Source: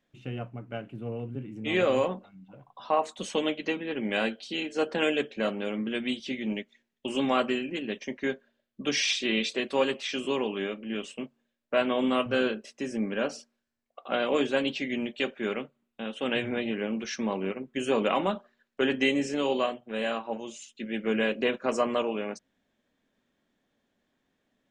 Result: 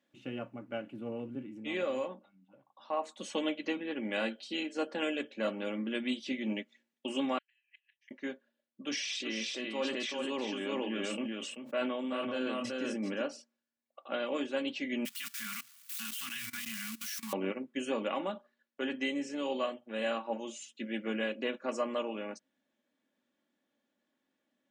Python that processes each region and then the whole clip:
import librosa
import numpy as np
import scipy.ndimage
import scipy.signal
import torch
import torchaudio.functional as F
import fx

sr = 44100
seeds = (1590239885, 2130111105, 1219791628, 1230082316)

y = fx.chain(x, sr, fx.steep_highpass(hz=1600.0, slope=96),
    fx.peak_eq(hz=8400.0, db=-13.0, octaves=2.9),
    fx.gate_flip(shuts_db=-35.0, range_db=-25), at=(7.38, 8.11))
y = fx.chain(y, sr, fx.echo_single(ms=385, db=-5.0),
    fx.sustainer(db_per_s=23.0), at=(8.84, 13.22))
y = fx.chain(y, sr, fx.crossing_spikes(level_db=-24.0),
    fx.cheby2_bandstop(low_hz=320.0, high_hz=660.0, order=4, stop_db=50),
    fx.level_steps(step_db=19), at=(15.05, 17.33))
y = scipy.signal.sosfilt(scipy.signal.butter(2, 170.0, 'highpass', fs=sr, output='sos'), y)
y = y + 0.44 * np.pad(y, (int(3.5 * sr / 1000.0), 0))[:len(y)]
y = fx.rider(y, sr, range_db=5, speed_s=0.5)
y = F.gain(torch.from_numpy(y), -7.5).numpy()